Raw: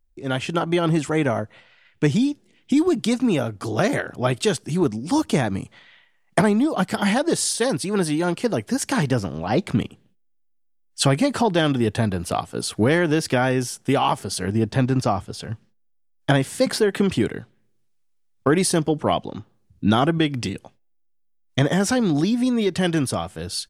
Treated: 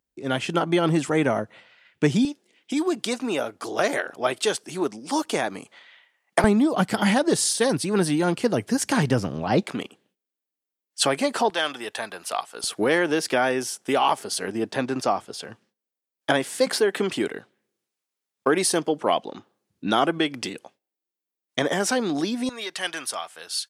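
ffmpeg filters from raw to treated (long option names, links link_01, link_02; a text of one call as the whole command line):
ffmpeg -i in.wav -af "asetnsamples=nb_out_samples=441:pad=0,asendcmd='2.25 highpass f 410;6.44 highpass f 100;9.63 highpass f 380;11.5 highpass f 790;12.64 highpass f 340;22.49 highpass f 950',highpass=160" out.wav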